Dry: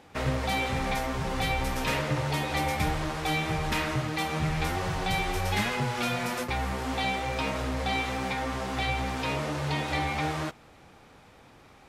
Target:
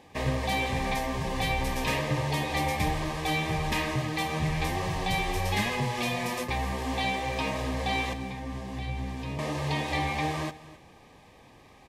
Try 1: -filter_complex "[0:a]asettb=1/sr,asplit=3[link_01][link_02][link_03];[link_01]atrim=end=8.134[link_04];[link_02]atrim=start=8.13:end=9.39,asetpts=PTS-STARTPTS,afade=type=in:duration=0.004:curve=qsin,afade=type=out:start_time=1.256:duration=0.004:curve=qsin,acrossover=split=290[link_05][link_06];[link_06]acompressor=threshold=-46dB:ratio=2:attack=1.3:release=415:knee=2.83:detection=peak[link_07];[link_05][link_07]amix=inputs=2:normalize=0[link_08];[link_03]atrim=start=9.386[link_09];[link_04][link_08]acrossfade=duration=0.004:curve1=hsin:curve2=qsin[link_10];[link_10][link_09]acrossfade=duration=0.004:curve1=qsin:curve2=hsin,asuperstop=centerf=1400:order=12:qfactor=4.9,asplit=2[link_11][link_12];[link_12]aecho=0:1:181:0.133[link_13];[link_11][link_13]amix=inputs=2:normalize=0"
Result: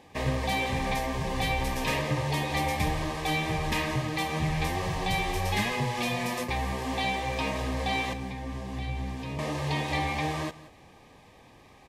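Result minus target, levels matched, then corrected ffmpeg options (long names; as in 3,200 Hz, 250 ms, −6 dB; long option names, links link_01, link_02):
echo 81 ms early
-filter_complex "[0:a]asettb=1/sr,asplit=3[link_01][link_02][link_03];[link_01]atrim=end=8.134[link_04];[link_02]atrim=start=8.13:end=9.39,asetpts=PTS-STARTPTS,afade=type=in:duration=0.004:curve=qsin,afade=type=out:start_time=1.256:duration=0.004:curve=qsin,acrossover=split=290[link_05][link_06];[link_06]acompressor=threshold=-46dB:ratio=2:attack=1.3:release=415:knee=2.83:detection=peak[link_07];[link_05][link_07]amix=inputs=2:normalize=0[link_08];[link_03]atrim=start=9.386[link_09];[link_04][link_08]acrossfade=duration=0.004:curve1=hsin:curve2=qsin[link_10];[link_10][link_09]acrossfade=duration=0.004:curve1=qsin:curve2=hsin,asuperstop=centerf=1400:order=12:qfactor=4.9,asplit=2[link_11][link_12];[link_12]aecho=0:1:262:0.133[link_13];[link_11][link_13]amix=inputs=2:normalize=0"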